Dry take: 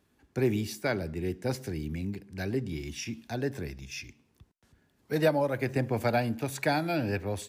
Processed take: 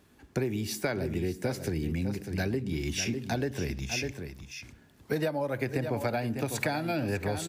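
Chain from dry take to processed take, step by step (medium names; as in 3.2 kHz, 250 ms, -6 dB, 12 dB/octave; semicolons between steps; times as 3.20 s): on a send: delay 599 ms -11.5 dB; on the sum: compression 10:1, threshold -35 dBFS, peak gain reduction 16 dB; trim +8.5 dB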